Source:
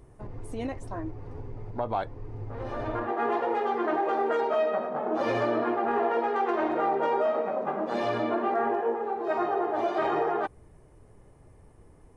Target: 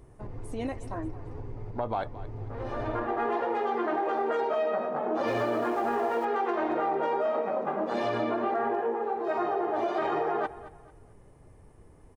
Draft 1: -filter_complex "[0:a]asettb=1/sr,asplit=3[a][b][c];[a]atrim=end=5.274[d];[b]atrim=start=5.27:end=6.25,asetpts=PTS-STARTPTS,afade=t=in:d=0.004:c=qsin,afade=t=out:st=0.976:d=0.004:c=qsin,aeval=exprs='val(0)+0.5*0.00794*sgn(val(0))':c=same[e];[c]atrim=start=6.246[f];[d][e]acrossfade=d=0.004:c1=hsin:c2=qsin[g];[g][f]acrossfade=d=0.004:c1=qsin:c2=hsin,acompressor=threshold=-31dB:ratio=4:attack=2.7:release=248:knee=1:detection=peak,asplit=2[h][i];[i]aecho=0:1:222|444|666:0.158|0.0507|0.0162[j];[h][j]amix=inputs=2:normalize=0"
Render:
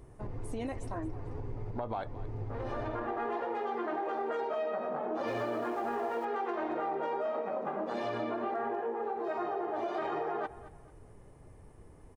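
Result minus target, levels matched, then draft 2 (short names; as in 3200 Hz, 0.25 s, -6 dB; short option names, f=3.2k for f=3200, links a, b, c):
compressor: peak gain reduction +6 dB
-filter_complex "[0:a]asettb=1/sr,asplit=3[a][b][c];[a]atrim=end=5.274[d];[b]atrim=start=5.27:end=6.25,asetpts=PTS-STARTPTS,afade=t=in:d=0.004:c=qsin,afade=t=out:st=0.976:d=0.004:c=qsin,aeval=exprs='val(0)+0.5*0.00794*sgn(val(0))':c=same[e];[c]atrim=start=6.246[f];[d][e]acrossfade=d=0.004:c1=hsin:c2=qsin[g];[g][f]acrossfade=d=0.004:c1=qsin:c2=hsin,acompressor=threshold=-23dB:ratio=4:attack=2.7:release=248:knee=1:detection=peak,asplit=2[h][i];[i]aecho=0:1:222|444|666:0.158|0.0507|0.0162[j];[h][j]amix=inputs=2:normalize=0"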